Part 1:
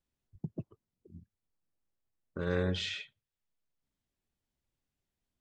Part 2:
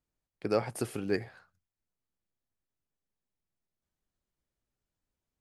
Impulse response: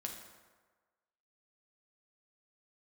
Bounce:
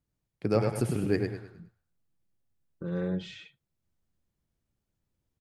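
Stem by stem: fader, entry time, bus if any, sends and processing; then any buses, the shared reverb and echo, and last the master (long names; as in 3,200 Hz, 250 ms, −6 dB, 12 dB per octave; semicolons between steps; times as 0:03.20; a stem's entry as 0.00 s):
−6.5 dB, 0.45 s, no send, no echo send, tilt shelving filter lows +6.5 dB, about 740 Hz; comb filter 5.9 ms, depth 92%
−1.0 dB, 0.00 s, no send, echo send −5 dB, parametric band 110 Hz +10.5 dB 2.6 octaves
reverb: not used
echo: repeating echo 104 ms, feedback 34%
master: no processing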